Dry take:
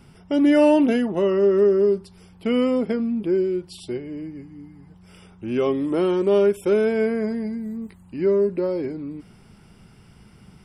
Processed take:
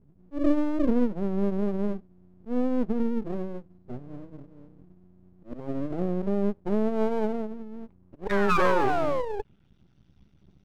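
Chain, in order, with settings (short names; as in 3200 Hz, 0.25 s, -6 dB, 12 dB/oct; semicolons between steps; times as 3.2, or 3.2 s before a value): per-bin expansion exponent 1.5; HPF 49 Hz 24 dB/oct; high shelf 2700 Hz -9 dB; de-hum 156.7 Hz, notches 3; auto swell 0.186 s; in parallel at +2.5 dB: compressor, threshold -31 dBFS, peak gain reduction 16.5 dB; on the sum: painted sound fall, 8.3–9.41, 380–1700 Hz -15 dBFS; formant shift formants +2 st; low-pass sweep 250 Hz -> 4200 Hz, 6.53–9.87; half-wave rectifier; gain -4 dB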